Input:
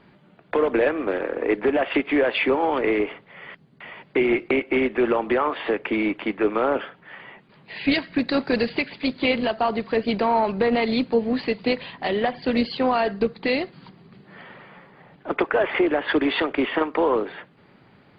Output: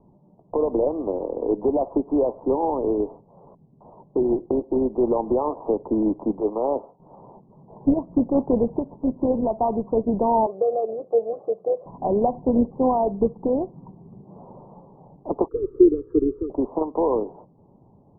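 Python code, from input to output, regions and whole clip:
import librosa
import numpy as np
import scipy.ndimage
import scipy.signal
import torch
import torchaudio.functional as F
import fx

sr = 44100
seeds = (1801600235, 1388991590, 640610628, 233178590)

y = fx.chain(x, sr, fx.savgol(points=65),
    fx.low_shelf(hz=370.0, db=-10.5),
    fx.band_widen(depth_pct=40), at=(6.4, 7.0))
y = fx.chain(y, sr, fx.highpass(hz=350.0, slope=12),
    fx.fixed_phaser(hz=940.0, stages=6), at=(10.46, 11.86))
y = fx.chain(y, sr, fx.cheby1_bandstop(low_hz=420.0, high_hz=1400.0, order=3),
    fx.comb(ms=2.4, depth=0.92),
    fx.band_widen(depth_pct=70), at=(15.48, 16.5))
y = scipy.signal.sosfilt(scipy.signal.butter(12, 1000.0, 'lowpass', fs=sr, output='sos'), y)
y = fx.low_shelf(y, sr, hz=86.0, db=9.5)
y = fx.rider(y, sr, range_db=10, speed_s=2.0)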